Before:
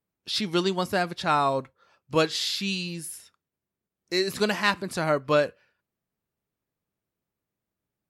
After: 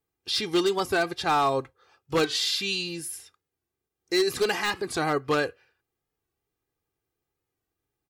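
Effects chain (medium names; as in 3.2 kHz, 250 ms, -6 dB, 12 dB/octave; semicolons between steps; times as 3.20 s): de-esser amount 55%; comb 2.5 ms, depth 69%; in parallel at -0.5 dB: peak limiter -17 dBFS, peak gain reduction 9.5 dB; on the sum: wavefolder -11 dBFS; warped record 45 rpm, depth 100 cents; trim -5 dB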